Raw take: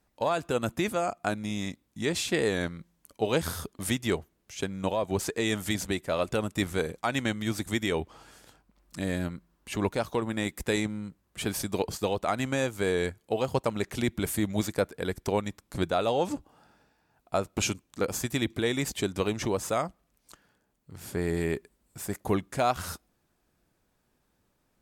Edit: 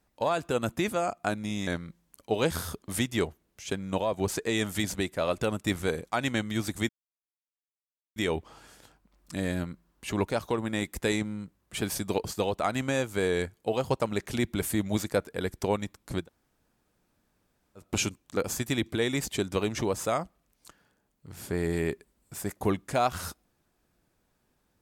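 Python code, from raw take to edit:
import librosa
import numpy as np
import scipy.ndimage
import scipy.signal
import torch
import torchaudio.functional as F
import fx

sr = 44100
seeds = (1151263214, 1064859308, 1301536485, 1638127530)

y = fx.edit(x, sr, fx.cut(start_s=1.67, length_s=0.91),
    fx.insert_silence(at_s=7.8, length_s=1.27),
    fx.room_tone_fill(start_s=15.85, length_s=1.62, crossfade_s=0.16), tone=tone)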